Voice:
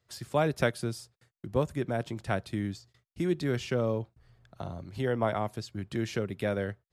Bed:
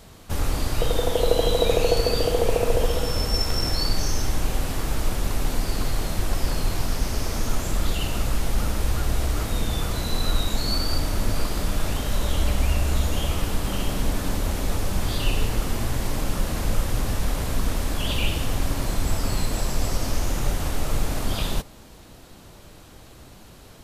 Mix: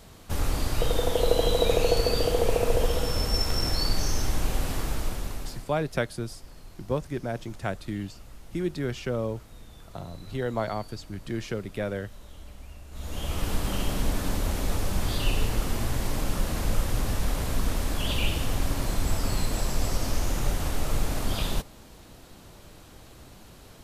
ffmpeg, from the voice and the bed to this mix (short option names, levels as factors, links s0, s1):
-filter_complex "[0:a]adelay=5350,volume=0.944[s0];[1:a]volume=7.94,afade=t=out:st=4.74:d=0.98:silence=0.0944061,afade=t=in:st=12.91:d=0.61:silence=0.0944061[s1];[s0][s1]amix=inputs=2:normalize=0"